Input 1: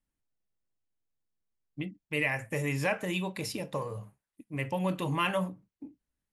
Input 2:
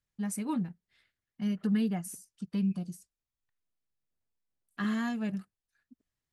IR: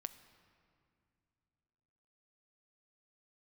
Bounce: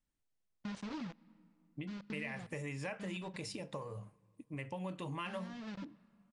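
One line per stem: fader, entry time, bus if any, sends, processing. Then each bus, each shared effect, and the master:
-2.5 dB, 0.00 s, send -15.5 dB, none
+1.5 dB, 0.45 s, send -17 dB, word length cut 6-bit, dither none; gate -36 dBFS, range -30 dB; low-pass 5.3 kHz 24 dB/octave; auto duck -14 dB, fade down 1.70 s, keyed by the first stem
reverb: on, pre-delay 6 ms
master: steep low-pass 10 kHz 72 dB/octave; compression 3:1, threshold -42 dBFS, peak gain reduction 12.5 dB

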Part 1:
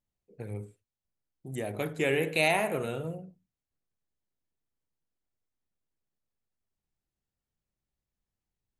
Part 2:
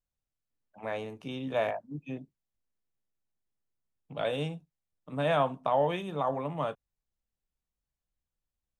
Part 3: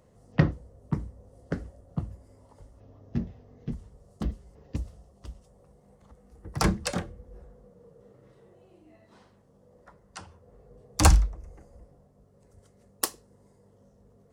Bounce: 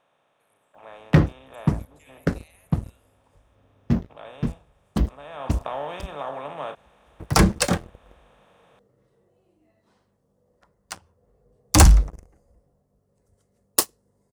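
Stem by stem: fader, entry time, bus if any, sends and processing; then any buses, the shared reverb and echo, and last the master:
-11.0 dB, 0.00 s, no send, differentiator; compression 2.5:1, threshold -46 dBFS, peak gain reduction 10.5 dB
5.31 s -15.5 dB -> 5.52 s -6 dB, 0.00 s, no send, spectral levelling over time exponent 0.4; bass shelf 290 Hz -10.5 dB
-2.5 dB, 0.75 s, no send, treble shelf 11 kHz +9.5 dB; waveshaping leveller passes 3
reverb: none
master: none

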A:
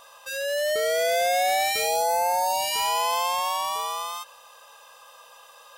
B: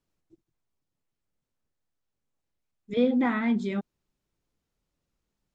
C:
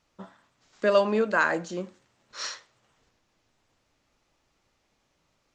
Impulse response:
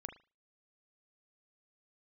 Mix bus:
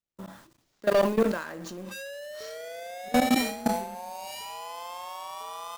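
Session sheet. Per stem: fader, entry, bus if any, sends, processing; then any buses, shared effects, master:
-4.0 dB, 1.65 s, no bus, no send, echo send -16 dB, treble shelf 2.7 kHz -3 dB
-7.0 dB, 0.15 s, bus A, send -8.5 dB, echo send -14 dB, peaking EQ 270 Hz +4 dB 1 oct
+1.0 dB, 0.00 s, bus A, send -5.5 dB, no echo send, median filter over 5 samples; companded quantiser 6-bit
bus A: 0.0 dB, peaking EQ 1.5 kHz -12.5 dB 2.1 oct; peak limiter -20 dBFS, peak gain reduction 7 dB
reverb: on, pre-delay 37 ms
echo: feedback delay 154 ms, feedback 44%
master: level held to a coarse grid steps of 23 dB; waveshaping leveller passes 2; decay stretcher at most 82 dB/s

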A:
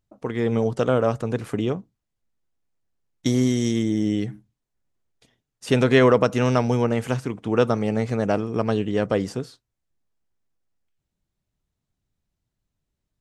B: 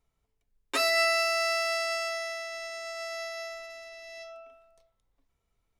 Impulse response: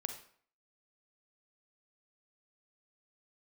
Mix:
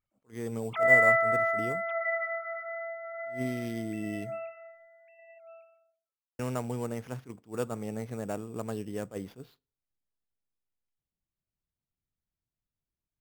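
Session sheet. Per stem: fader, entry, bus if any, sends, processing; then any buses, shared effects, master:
-13.5 dB, 0.00 s, muted 4.87–6.39 s, send -23 dB, no echo send, treble shelf 4.9 kHz -6.5 dB; sample-rate reducer 8.2 kHz, jitter 0%; attacks held to a fixed rise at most 290 dB/s
+2.0 dB, 0.00 s, no send, echo send -13 dB, formants replaced by sine waves; endings held to a fixed fall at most 140 dB/s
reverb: on, RT60 0.55 s, pre-delay 37 ms
echo: delay 1151 ms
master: none

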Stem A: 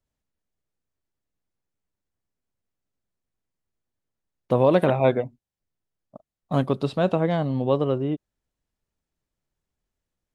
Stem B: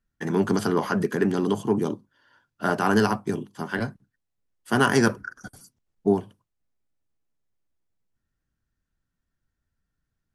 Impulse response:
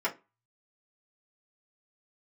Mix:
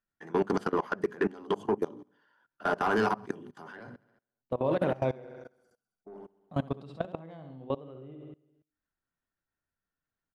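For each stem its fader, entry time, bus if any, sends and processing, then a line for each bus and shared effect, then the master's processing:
-3.0 dB, 0.00 s, no send, echo send -8.5 dB, gate -41 dBFS, range -16 dB; treble shelf 3.4 kHz -6 dB
-2.5 dB, 0.00 s, no send, echo send -24 dB, hum notches 50/100/150/200/250 Hz; overdrive pedal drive 17 dB, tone 1.3 kHz, clips at -6 dBFS; auto duck -21 dB, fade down 0.60 s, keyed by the first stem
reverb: none
echo: feedback delay 68 ms, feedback 56%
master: hum notches 60/120/180/240/300/360/420/480/540 Hz; level held to a coarse grid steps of 23 dB; peak limiter -18 dBFS, peak gain reduction 5.5 dB

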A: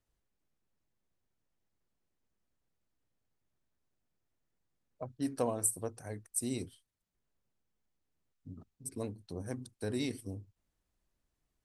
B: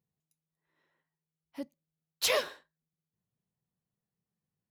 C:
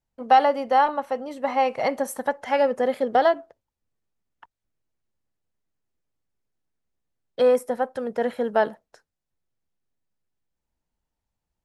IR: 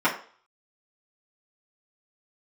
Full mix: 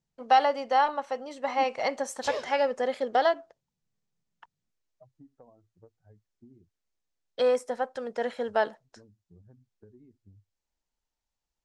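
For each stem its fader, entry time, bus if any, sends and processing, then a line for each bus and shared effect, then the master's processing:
-4.5 dB, 0.00 s, no send, expander on every frequency bin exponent 2; low-pass 1.1 kHz 24 dB/octave; compression 12:1, threshold -47 dBFS, peak gain reduction 18 dB
+0.5 dB, 0.00 s, no send, tilt shelf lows +8.5 dB, about 910 Hz; feedback comb 240 Hz, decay 0.86 s, mix 60%
-4.0 dB, 0.00 s, no send, peaking EQ 120 Hz -8 dB 2.5 oct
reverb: none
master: low-pass 7.2 kHz 24 dB/octave; treble shelf 4.5 kHz +11 dB

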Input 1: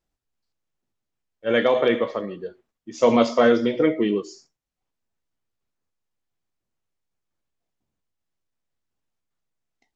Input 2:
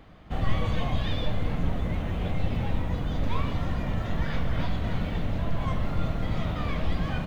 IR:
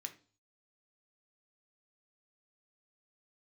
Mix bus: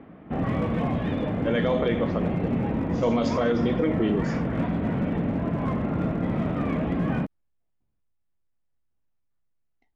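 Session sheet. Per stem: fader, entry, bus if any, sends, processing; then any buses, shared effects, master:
-3.5 dB, 0.00 s, no send, level-controlled noise filter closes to 2.6 kHz, open at -17.5 dBFS; bass shelf 130 Hz +11.5 dB
+1.5 dB, 0.00 s, send -3.5 dB, Chebyshev band-pass 250–2400 Hz, order 2; tilt EQ -4.5 dB/octave; one-sided clip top -24 dBFS, bottom -19.5 dBFS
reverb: on, RT60 0.40 s, pre-delay 3 ms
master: peak limiter -14.5 dBFS, peak gain reduction 8.5 dB

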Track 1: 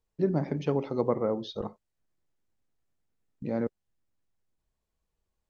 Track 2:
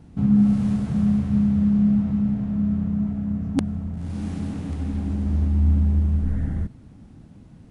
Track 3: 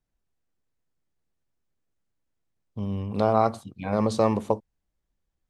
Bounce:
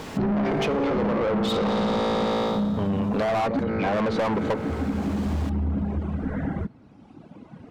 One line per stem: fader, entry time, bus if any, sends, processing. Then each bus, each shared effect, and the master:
+0.5 dB, 0.00 s, no send, feedback comb 56 Hz, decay 1.9 s, harmonics all, mix 80%; level flattener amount 100%; auto duck -9 dB, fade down 0.30 s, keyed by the third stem
-7.5 dB, 0.00 s, no send, treble shelf 2.3 kHz -9.5 dB; band-stop 1.8 kHz, Q 16; reverb removal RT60 1.9 s
-2.5 dB, 0.00 s, no send, reverb removal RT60 0.51 s; low-pass that closes with the level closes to 1.9 kHz, closed at -19 dBFS; treble shelf 2.4 kHz -7 dB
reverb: none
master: treble shelf 8.2 kHz -5.5 dB; overdrive pedal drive 33 dB, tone 2.3 kHz, clips at -10 dBFS; compression, threshold -22 dBFS, peak gain reduction 7 dB

